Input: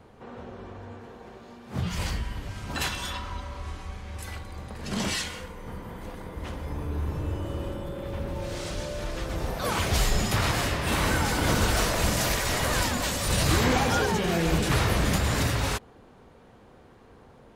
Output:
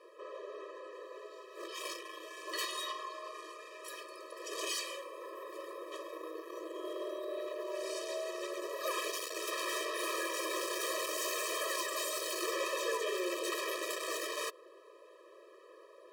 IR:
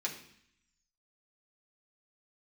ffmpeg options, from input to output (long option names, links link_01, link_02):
-af "asetrate=48000,aresample=44100,asoftclip=type=tanh:threshold=-28.5dB,afftfilt=real='re*eq(mod(floor(b*sr/1024/330),2),1)':imag='im*eq(mod(floor(b*sr/1024/330),2),1)':win_size=1024:overlap=0.75"